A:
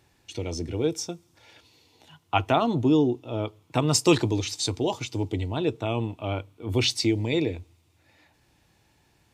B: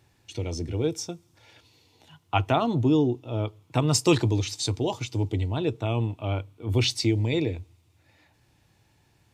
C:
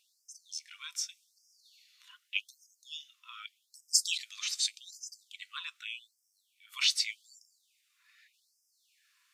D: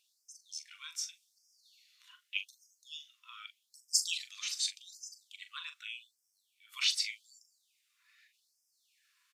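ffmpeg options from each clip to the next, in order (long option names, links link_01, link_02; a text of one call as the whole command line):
ffmpeg -i in.wav -af "equalizer=frequency=110:width_type=o:width=0.83:gain=6,volume=-1.5dB" out.wav
ffmpeg -i in.wav -af "afftfilt=real='re*gte(b*sr/1024,970*pow(4900/970,0.5+0.5*sin(2*PI*0.84*pts/sr)))':imag='im*gte(b*sr/1024,970*pow(4900/970,0.5+0.5*sin(2*PI*0.84*pts/sr)))':win_size=1024:overlap=0.75" out.wav
ffmpeg -i in.wav -filter_complex "[0:a]asplit=2[link_01][link_02];[link_02]adelay=41,volume=-10dB[link_03];[link_01][link_03]amix=inputs=2:normalize=0,volume=-3dB" out.wav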